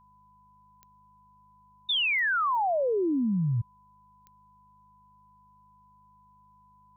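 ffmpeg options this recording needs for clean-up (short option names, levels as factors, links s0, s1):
-af "adeclick=t=4,bandreject=f=51.2:t=h:w=4,bandreject=f=102.4:t=h:w=4,bandreject=f=153.6:t=h:w=4,bandreject=f=204.8:t=h:w=4,bandreject=f=1000:w=30"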